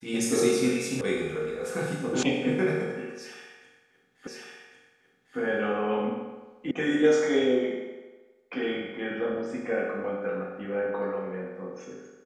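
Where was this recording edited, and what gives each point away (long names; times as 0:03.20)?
0:01.01: cut off before it has died away
0:02.23: cut off before it has died away
0:04.27: the same again, the last 1.1 s
0:06.71: cut off before it has died away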